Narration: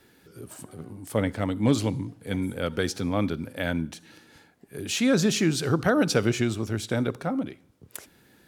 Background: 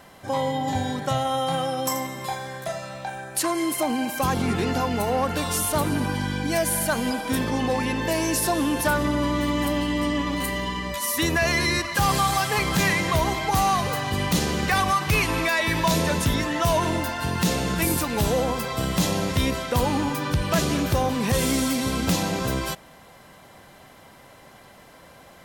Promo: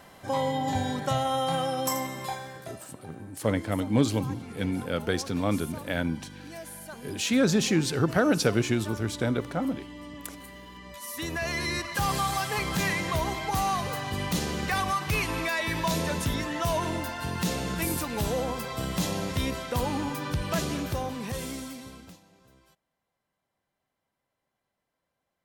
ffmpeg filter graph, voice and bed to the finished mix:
ffmpeg -i stem1.wav -i stem2.wav -filter_complex "[0:a]adelay=2300,volume=-1dB[link_01];[1:a]volume=10dB,afade=type=out:start_time=2.17:duration=0.67:silence=0.158489,afade=type=in:start_time=10.69:duration=1.22:silence=0.237137,afade=type=out:start_time=20.51:duration=1.69:silence=0.0398107[link_02];[link_01][link_02]amix=inputs=2:normalize=0" out.wav

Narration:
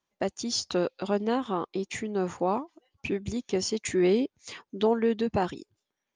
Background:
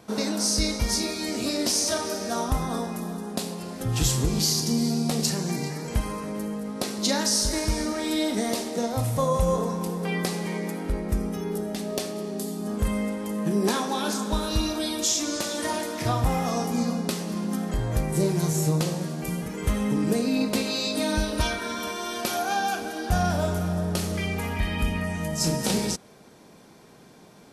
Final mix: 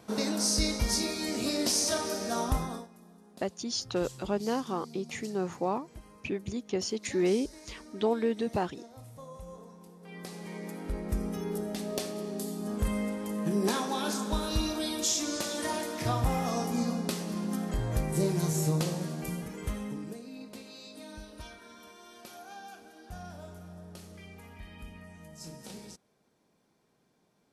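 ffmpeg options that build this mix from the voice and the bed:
ffmpeg -i stem1.wav -i stem2.wav -filter_complex "[0:a]adelay=3200,volume=-3.5dB[link_01];[1:a]volume=15dB,afade=type=out:start_time=2.55:duration=0.33:silence=0.105925,afade=type=in:start_time=10.01:duration=1.32:silence=0.11885,afade=type=out:start_time=19.13:duration=1.06:silence=0.158489[link_02];[link_01][link_02]amix=inputs=2:normalize=0" out.wav

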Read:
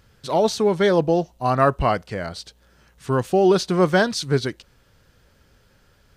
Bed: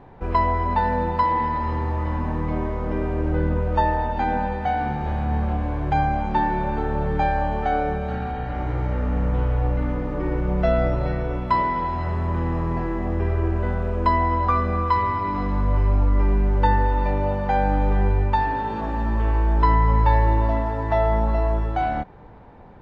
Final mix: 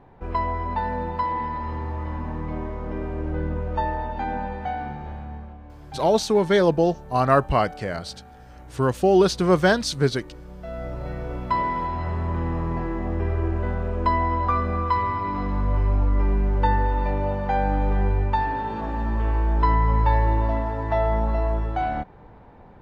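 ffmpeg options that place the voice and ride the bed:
ffmpeg -i stem1.wav -i stem2.wav -filter_complex "[0:a]adelay=5700,volume=-0.5dB[link_01];[1:a]volume=11.5dB,afade=type=out:start_time=4.64:duration=0.91:silence=0.211349,afade=type=in:start_time=10.61:duration=1.07:silence=0.149624[link_02];[link_01][link_02]amix=inputs=2:normalize=0" out.wav

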